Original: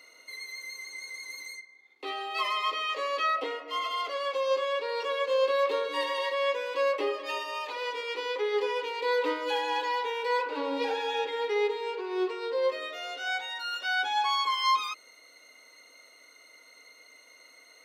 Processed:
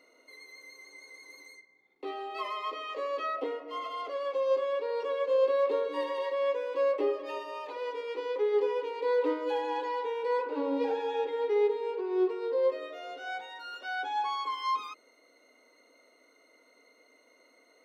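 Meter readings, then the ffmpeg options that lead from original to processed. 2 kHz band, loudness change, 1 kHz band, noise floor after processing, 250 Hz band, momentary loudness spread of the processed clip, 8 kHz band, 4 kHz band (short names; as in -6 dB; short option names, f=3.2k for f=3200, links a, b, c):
-8.5 dB, -1.5 dB, -4.5 dB, -64 dBFS, +3.0 dB, 16 LU, under -10 dB, -11.5 dB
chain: -af "tiltshelf=f=970:g=9,volume=-4dB"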